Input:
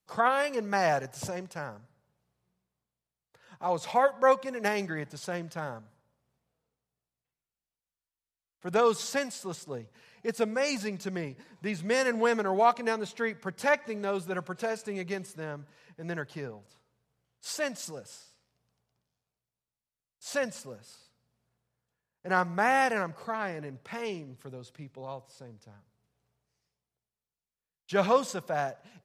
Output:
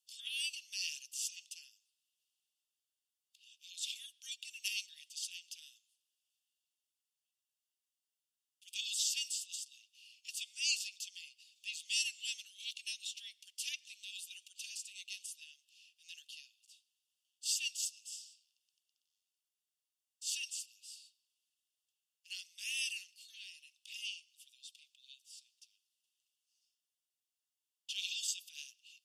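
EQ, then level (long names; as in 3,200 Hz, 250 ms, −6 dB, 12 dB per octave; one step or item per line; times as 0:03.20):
Chebyshev high-pass with heavy ripple 2,700 Hz, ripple 3 dB
high-shelf EQ 7,500 Hz −8 dB
notch filter 4,000 Hz, Q 7.3
+8.5 dB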